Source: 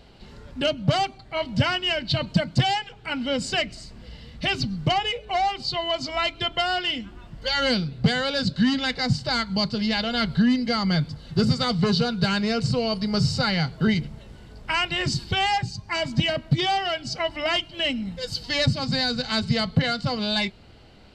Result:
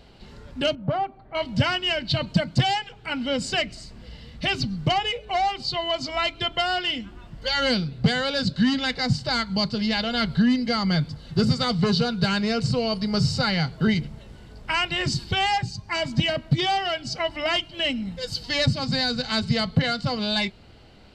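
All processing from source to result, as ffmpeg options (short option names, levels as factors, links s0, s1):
-filter_complex "[0:a]asettb=1/sr,asplit=3[s0][s1][s2];[s0]atrim=end=0.754[s3];[s1]atrim=start=0.75:end=1.35,asetpts=PTS-STARTPTS,afade=t=in:d=0.004:c=qsin,afade=t=out:st=0.596:d=0.004:c=qsin,lowpass=1200,equalizer=f=76:w=0.34:g=-7,acompressor=mode=upward:threshold=0.00708:ratio=2.5:attack=3.2:release=140:knee=2.83:detection=peak[s4];[s2]atrim=start=1.346[s5];[s3][s4]acrossfade=d=0.004:c1=hsin:c2=qsin[s6];[s6][s5]acrossfade=d=0.004:c1=qsin:c2=hsin"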